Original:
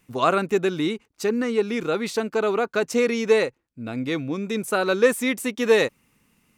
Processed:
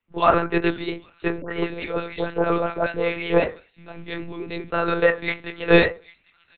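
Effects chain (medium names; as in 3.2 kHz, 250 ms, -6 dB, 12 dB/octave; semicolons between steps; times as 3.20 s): feedback echo behind a high-pass 801 ms, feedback 65%, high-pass 2.5 kHz, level -17.5 dB; reverberation RT60 0.35 s, pre-delay 4 ms, DRR 1 dB; vibrato 3.6 Hz 58 cents; doubling 21 ms -13.5 dB; 1.41–3.42 s: phase dispersion highs, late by 105 ms, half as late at 1.3 kHz; monotone LPC vocoder at 8 kHz 170 Hz; bass shelf 220 Hz -9.5 dB; three bands expanded up and down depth 40%; trim -1 dB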